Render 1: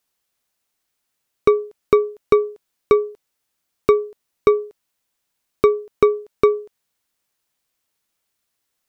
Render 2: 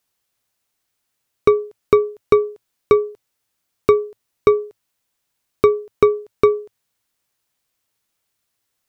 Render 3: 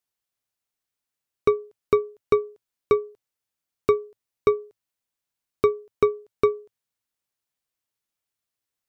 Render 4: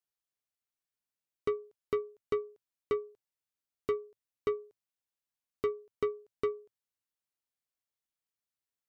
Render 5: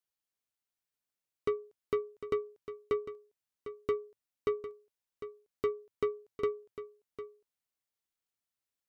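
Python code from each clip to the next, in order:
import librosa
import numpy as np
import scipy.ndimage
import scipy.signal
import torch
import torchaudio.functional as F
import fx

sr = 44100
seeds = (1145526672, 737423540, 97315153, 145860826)

y1 = fx.peak_eq(x, sr, hz=110.0, db=8.0, octaves=0.3)
y1 = y1 * 10.0 ** (1.0 / 20.0)
y2 = fx.upward_expand(y1, sr, threshold_db=-21.0, expansion=1.5)
y2 = y2 * 10.0 ** (-5.5 / 20.0)
y3 = 10.0 ** (-14.0 / 20.0) * np.tanh(y2 / 10.0 ** (-14.0 / 20.0))
y3 = y3 * 10.0 ** (-9.0 / 20.0)
y4 = y3 + 10.0 ** (-12.0 / 20.0) * np.pad(y3, (int(752 * sr / 1000.0), 0))[:len(y3)]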